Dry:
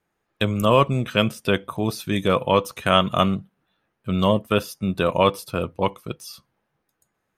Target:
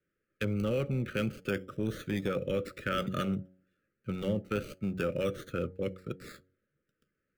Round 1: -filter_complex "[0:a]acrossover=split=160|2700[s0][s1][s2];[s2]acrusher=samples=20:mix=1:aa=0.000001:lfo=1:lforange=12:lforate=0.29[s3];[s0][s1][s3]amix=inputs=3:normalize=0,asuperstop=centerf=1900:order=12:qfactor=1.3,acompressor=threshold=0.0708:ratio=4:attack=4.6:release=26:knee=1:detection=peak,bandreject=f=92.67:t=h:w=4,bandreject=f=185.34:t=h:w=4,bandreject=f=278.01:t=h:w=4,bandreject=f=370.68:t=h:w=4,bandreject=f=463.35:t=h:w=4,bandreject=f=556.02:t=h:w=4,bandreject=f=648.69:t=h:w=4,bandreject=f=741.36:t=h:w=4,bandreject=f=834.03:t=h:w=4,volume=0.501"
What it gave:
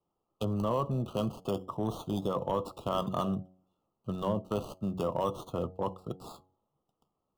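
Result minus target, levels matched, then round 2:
2 kHz band -16.0 dB
-filter_complex "[0:a]acrossover=split=160|2700[s0][s1][s2];[s2]acrusher=samples=20:mix=1:aa=0.000001:lfo=1:lforange=12:lforate=0.29[s3];[s0][s1][s3]amix=inputs=3:normalize=0,asuperstop=centerf=860:order=12:qfactor=1.3,acompressor=threshold=0.0708:ratio=4:attack=4.6:release=26:knee=1:detection=peak,bandreject=f=92.67:t=h:w=4,bandreject=f=185.34:t=h:w=4,bandreject=f=278.01:t=h:w=4,bandreject=f=370.68:t=h:w=4,bandreject=f=463.35:t=h:w=4,bandreject=f=556.02:t=h:w=4,bandreject=f=648.69:t=h:w=4,bandreject=f=741.36:t=h:w=4,bandreject=f=834.03:t=h:w=4,volume=0.501"

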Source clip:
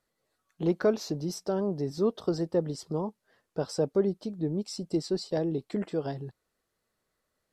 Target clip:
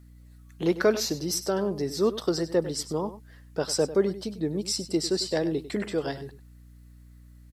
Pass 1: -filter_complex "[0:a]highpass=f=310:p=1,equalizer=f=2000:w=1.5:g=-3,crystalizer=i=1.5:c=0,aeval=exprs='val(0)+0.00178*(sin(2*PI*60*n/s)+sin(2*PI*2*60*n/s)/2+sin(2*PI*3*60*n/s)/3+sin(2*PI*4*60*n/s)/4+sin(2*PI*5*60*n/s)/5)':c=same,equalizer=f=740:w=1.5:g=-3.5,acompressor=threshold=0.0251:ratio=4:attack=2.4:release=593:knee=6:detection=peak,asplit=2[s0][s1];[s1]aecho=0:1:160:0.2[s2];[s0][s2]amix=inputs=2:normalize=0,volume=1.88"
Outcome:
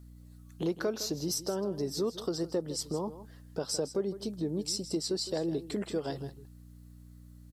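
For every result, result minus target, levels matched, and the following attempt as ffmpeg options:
echo 62 ms late; compression: peak gain reduction +10.5 dB; 2 kHz band -5.0 dB
-filter_complex "[0:a]highpass=f=310:p=1,equalizer=f=2000:w=1.5:g=-3,crystalizer=i=1.5:c=0,aeval=exprs='val(0)+0.00178*(sin(2*PI*60*n/s)+sin(2*PI*2*60*n/s)/2+sin(2*PI*3*60*n/s)/3+sin(2*PI*4*60*n/s)/4+sin(2*PI*5*60*n/s)/5)':c=same,equalizer=f=740:w=1.5:g=-3.5,acompressor=threshold=0.0251:ratio=4:attack=2.4:release=593:knee=6:detection=peak,asplit=2[s0][s1];[s1]aecho=0:1:98:0.2[s2];[s0][s2]amix=inputs=2:normalize=0,volume=1.88"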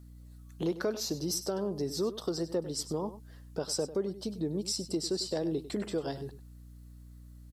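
compression: peak gain reduction +10.5 dB; 2 kHz band -5.0 dB
-filter_complex "[0:a]highpass=f=310:p=1,equalizer=f=2000:w=1.5:g=-3,crystalizer=i=1.5:c=0,aeval=exprs='val(0)+0.00178*(sin(2*PI*60*n/s)+sin(2*PI*2*60*n/s)/2+sin(2*PI*3*60*n/s)/3+sin(2*PI*4*60*n/s)/4+sin(2*PI*5*60*n/s)/5)':c=same,equalizer=f=740:w=1.5:g=-3.5,asplit=2[s0][s1];[s1]aecho=0:1:98:0.2[s2];[s0][s2]amix=inputs=2:normalize=0,volume=1.88"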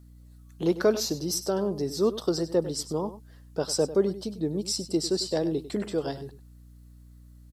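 2 kHz band -5.0 dB
-filter_complex "[0:a]highpass=f=310:p=1,equalizer=f=2000:w=1.5:g=5.5,crystalizer=i=1.5:c=0,aeval=exprs='val(0)+0.00178*(sin(2*PI*60*n/s)+sin(2*PI*2*60*n/s)/2+sin(2*PI*3*60*n/s)/3+sin(2*PI*4*60*n/s)/4+sin(2*PI*5*60*n/s)/5)':c=same,equalizer=f=740:w=1.5:g=-3.5,asplit=2[s0][s1];[s1]aecho=0:1:98:0.2[s2];[s0][s2]amix=inputs=2:normalize=0,volume=1.88"

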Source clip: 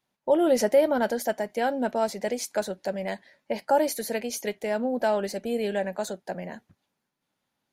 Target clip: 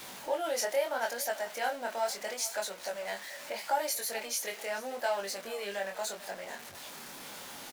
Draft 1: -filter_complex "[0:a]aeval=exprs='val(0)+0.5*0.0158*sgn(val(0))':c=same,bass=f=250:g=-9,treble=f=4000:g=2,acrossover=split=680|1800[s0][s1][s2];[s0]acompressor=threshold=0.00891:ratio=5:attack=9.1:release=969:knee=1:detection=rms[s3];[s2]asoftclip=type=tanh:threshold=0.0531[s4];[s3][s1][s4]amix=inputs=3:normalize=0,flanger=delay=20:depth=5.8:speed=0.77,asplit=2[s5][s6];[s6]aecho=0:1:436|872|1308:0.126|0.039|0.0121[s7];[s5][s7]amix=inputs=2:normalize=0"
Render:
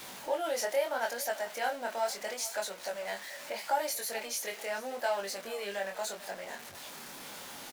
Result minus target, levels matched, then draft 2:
saturation: distortion +18 dB
-filter_complex "[0:a]aeval=exprs='val(0)+0.5*0.0158*sgn(val(0))':c=same,bass=f=250:g=-9,treble=f=4000:g=2,acrossover=split=680|1800[s0][s1][s2];[s0]acompressor=threshold=0.00891:ratio=5:attack=9.1:release=969:knee=1:detection=rms[s3];[s2]asoftclip=type=tanh:threshold=0.2[s4];[s3][s1][s4]amix=inputs=3:normalize=0,flanger=delay=20:depth=5.8:speed=0.77,asplit=2[s5][s6];[s6]aecho=0:1:436|872|1308:0.126|0.039|0.0121[s7];[s5][s7]amix=inputs=2:normalize=0"

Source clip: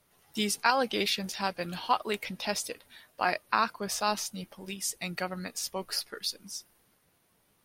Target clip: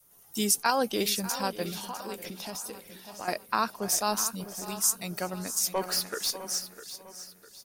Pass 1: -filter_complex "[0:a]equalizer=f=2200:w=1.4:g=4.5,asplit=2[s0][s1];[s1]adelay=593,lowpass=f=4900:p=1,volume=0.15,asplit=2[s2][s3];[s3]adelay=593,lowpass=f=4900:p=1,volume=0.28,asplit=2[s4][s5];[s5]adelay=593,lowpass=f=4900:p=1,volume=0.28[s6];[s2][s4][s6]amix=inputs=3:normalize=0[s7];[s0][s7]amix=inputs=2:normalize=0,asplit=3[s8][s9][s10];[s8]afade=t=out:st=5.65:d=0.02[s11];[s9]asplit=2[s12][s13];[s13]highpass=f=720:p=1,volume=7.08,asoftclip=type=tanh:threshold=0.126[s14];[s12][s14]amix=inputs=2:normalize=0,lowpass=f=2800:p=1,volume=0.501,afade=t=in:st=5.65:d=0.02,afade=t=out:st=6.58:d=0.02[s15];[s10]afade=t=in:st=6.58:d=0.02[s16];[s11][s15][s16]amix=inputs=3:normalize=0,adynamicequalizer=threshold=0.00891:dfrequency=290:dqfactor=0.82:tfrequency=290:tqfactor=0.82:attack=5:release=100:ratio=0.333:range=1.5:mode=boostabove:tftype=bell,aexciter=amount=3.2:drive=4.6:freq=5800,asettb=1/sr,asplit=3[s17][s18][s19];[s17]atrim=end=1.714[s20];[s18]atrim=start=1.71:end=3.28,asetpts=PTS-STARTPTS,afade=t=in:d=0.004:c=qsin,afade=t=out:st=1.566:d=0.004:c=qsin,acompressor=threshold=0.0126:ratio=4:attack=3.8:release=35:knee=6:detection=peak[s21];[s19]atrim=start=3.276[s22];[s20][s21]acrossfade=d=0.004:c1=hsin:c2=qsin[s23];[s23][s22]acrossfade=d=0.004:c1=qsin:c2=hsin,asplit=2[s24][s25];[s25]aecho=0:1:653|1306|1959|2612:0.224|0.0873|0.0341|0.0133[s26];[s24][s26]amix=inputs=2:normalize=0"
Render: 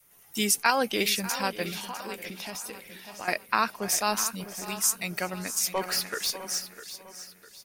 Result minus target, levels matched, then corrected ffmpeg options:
2 kHz band +5.0 dB
-filter_complex "[0:a]equalizer=f=2200:w=1.4:g=-5.5,asplit=2[s0][s1];[s1]adelay=593,lowpass=f=4900:p=1,volume=0.15,asplit=2[s2][s3];[s3]adelay=593,lowpass=f=4900:p=1,volume=0.28,asplit=2[s4][s5];[s5]adelay=593,lowpass=f=4900:p=1,volume=0.28[s6];[s2][s4][s6]amix=inputs=3:normalize=0[s7];[s0][s7]amix=inputs=2:normalize=0,asplit=3[s8][s9][s10];[s8]afade=t=out:st=5.65:d=0.02[s11];[s9]asplit=2[s12][s13];[s13]highpass=f=720:p=1,volume=7.08,asoftclip=type=tanh:threshold=0.126[s14];[s12][s14]amix=inputs=2:normalize=0,lowpass=f=2800:p=1,volume=0.501,afade=t=in:st=5.65:d=0.02,afade=t=out:st=6.58:d=0.02[s15];[s10]afade=t=in:st=6.58:d=0.02[s16];[s11][s15][s16]amix=inputs=3:normalize=0,adynamicequalizer=threshold=0.00891:dfrequency=290:dqfactor=0.82:tfrequency=290:tqfactor=0.82:attack=5:release=100:ratio=0.333:range=1.5:mode=boostabove:tftype=bell,aexciter=amount=3.2:drive=4.6:freq=5800,asettb=1/sr,asplit=3[s17][s18][s19];[s17]atrim=end=1.714[s20];[s18]atrim=start=1.71:end=3.28,asetpts=PTS-STARTPTS,afade=t=in:d=0.004:c=qsin,afade=t=out:st=1.566:d=0.004:c=qsin,acompressor=threshold=0.0126:ratio=4:attack=3.8:release=35:knee=6:detection=peak[s21];[s19]atrim=start=3.276[s22];[s20][s21]acrossfade=d=0.004:c1=hsin:c2=qsin[s23];[s23][s22]acrossfade=d=0.004:c1=qsin:c2=hsin,asplit=2[s24][s25];[s25]aecho=0:1:653|1306|1959|2612:0.224|0.0873|0.0341|0.0133[s26];[s24][s26]amix=inputs=2:normalize=0"

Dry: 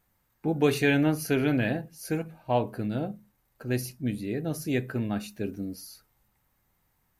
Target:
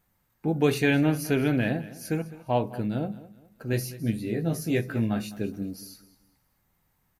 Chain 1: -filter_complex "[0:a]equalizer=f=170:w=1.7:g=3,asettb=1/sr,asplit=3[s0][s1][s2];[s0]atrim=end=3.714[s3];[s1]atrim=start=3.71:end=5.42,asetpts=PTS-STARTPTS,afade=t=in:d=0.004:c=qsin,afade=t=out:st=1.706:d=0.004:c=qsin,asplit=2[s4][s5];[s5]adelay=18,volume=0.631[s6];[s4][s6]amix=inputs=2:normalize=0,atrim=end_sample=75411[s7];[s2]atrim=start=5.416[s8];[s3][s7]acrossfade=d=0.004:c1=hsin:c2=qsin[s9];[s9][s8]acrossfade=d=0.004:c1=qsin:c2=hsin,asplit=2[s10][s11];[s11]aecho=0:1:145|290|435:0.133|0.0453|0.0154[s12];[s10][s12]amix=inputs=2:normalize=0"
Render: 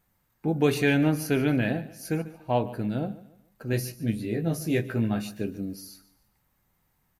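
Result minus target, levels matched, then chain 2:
echo 62 ms early
-filter_complex "[0:a]equalizer=f=170:w=1.7:g=3,asettb=1/sr,asplit=3[s0][s1][s2];[s0]atrim=end=3.714[s3];[s1]atrim=start=3.71:end=5.42,asetpts=PTS-STARTPTS,afade=t=in:d=0.004:c=qsin,afade=t=out:st=1.706:d=0.004:c=qsin,asplit=2[s4][s5];[s5]adelay=18,volume=0.631[s6];[s4][s6]amix=inputs=2:normalize=0,atrim=end_sample=75411[s7];[s2]atrim=start=5.416[s8];[s3][s7]acrossfade=d=0.004:c1=hsin:c2=qsin[s9];[s9][s8]acrossfade=d=0.004:c1=qsin:c2=hsin,asplit=2[s10][s11];[s11]aecho=0:1:207|414|621:0.133|0.0453|0.0154[s12];[s10][s12]amix=inputs=2:normalize=0"

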